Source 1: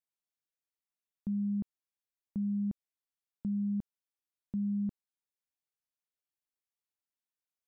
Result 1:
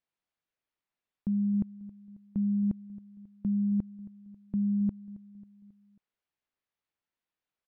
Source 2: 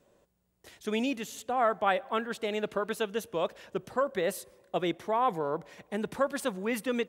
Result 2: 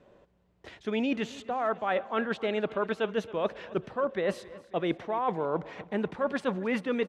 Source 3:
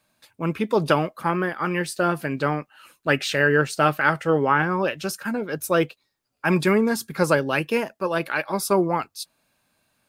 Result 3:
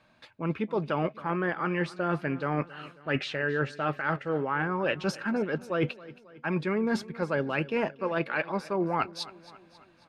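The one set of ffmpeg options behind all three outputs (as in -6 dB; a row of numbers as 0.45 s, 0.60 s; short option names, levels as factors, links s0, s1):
-af "lowpass=3100,areverse,acompressor=threshold=0.0251:ratio=12,areverse,aecho=1:1:271|542|813|1084:0.112|0.0595|0.0315|0.0167,volume=2.24"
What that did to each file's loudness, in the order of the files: +5.0 LU, +0.5 LU, -7.5 LU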